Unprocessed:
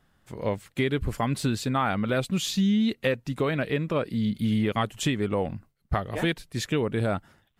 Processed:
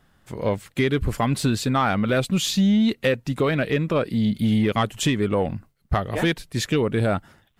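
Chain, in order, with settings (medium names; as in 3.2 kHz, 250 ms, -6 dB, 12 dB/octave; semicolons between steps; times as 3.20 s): saturation -15.5 dBFS, distortion -23 dB; trim +5.5 dB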